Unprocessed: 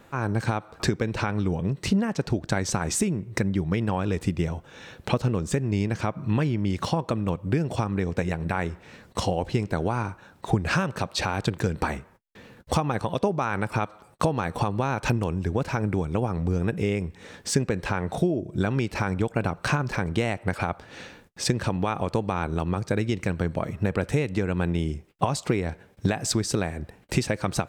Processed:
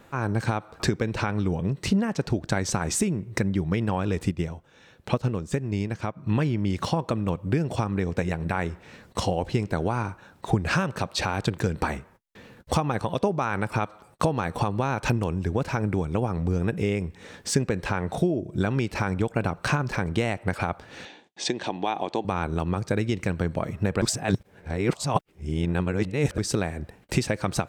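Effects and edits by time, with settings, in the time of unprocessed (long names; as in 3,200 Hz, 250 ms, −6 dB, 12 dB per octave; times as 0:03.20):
0:04.31–0:06.27: expander for the loud parts, over −38 dBFS
0:21.05–0:22.25: loudspeaker in its box 300–7,100 Hz, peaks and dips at 330 Hz +4 dB, 510 Hz −5 dB, 770 Hz +6 dB, 1,300 Hz −10 dB, 3,500 Hz +7 dB, 5,100 Hz −4 dB
0:24.02–0:26.38: reverse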